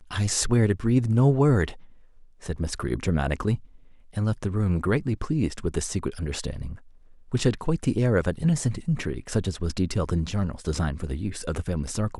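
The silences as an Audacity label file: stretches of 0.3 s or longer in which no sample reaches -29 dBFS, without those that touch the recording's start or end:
1.700000	2.460000	silence
3.550000	4.170000	silence
6.720000	7.340000	silence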